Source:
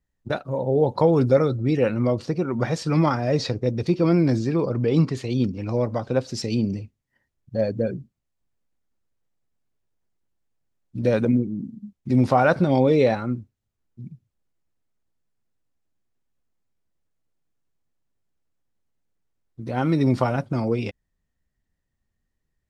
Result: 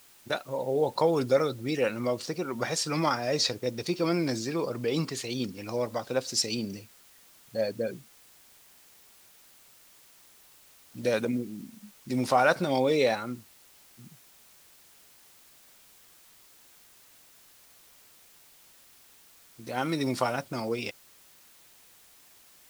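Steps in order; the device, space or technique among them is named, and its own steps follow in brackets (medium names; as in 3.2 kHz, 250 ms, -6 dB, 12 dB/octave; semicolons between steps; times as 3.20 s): turntable without a phono preamp (RIAA curve recording; white noise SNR 25 dB); trim -3 dB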